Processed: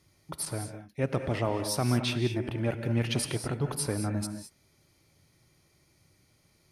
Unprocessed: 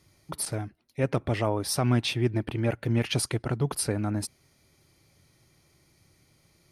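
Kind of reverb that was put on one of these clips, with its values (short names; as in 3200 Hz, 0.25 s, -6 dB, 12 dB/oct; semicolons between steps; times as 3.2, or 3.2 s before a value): non-linear reverb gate 0.24 s rising, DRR 7 dB; gain -3 dB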